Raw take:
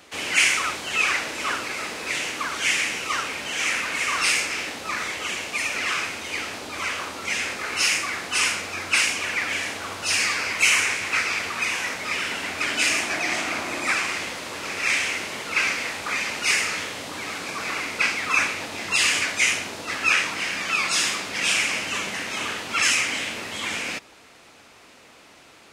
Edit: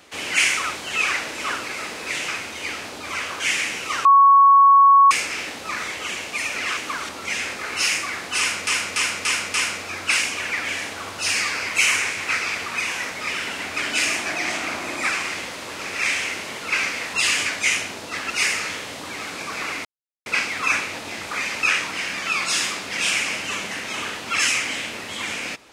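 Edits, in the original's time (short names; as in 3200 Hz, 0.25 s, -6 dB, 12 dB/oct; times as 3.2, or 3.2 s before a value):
2.28–2.6 swap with 5.97–7.09
3.25–4.31 bleep 1110 Hz -8.5 dBFS
8.38–8.67 loop, 5 plays
15.98–16.38 swap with 18.9–20.06
17.93 insert silence 0.41 s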